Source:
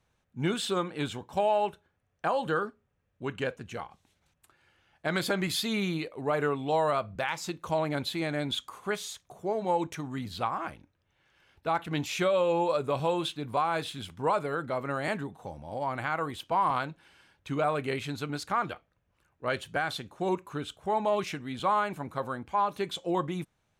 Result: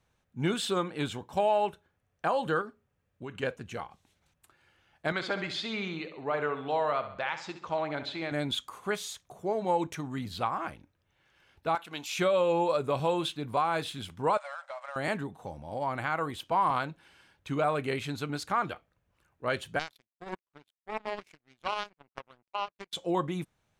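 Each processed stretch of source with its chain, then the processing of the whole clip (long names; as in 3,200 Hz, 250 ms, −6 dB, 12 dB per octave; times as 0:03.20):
0:02.61–0:03.43: downward compressor 3 to 1, threshold −37 dBFS + high-pass filter 45 Hz
0:05.12–0:08.32: Gaussian smoothing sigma 1.7 samples + low-shelf EQ 370 Hz −10 dB + repeating echo 67 ms, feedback 48%, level −11 dB
0:11.75–0:12.17: high-pass filter 1,100 Hz 6 dB per octave + parametric band 1,900 Hz −7.5 dB 0.31 octaves
0:14.37–0:14.96: mu-law and A-law mismatch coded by A + linear-phase brick-wall band-pass 540–9,400 Hz + downward compressor, threshold −36 dBFS
0:19.79–0:22.93: low-pass filter 7,700 Hz + parametric band 2,200 Hz +7.5 dB 0.27 octaves + power curve on the samples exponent 3
whole clip: no processing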